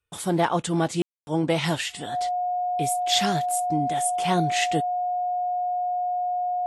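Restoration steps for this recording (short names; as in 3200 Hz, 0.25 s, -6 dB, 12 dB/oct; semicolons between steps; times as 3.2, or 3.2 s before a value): clip repair -10.5 dBFS; notch 720 Hz, Q 30; room tone fill 1.02–1.27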